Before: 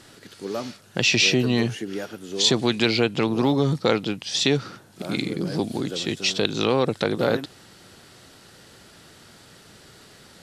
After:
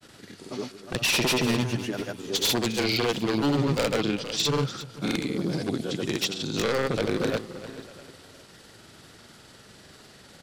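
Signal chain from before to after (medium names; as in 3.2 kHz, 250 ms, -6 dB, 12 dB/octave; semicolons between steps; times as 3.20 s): wavefolder -16.5 dBFS; feedback delay 341 ms, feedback 34%, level -13 dB; granulator, pitch spread up and down by 0 st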